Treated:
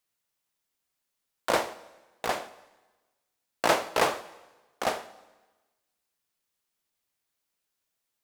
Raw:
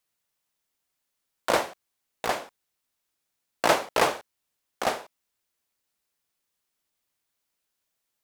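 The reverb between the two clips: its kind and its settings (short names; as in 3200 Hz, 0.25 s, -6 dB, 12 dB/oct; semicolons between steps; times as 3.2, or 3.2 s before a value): plate-style reverb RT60 1.2 s, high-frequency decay 0.95×, DRR 14 dB; gain -2 dB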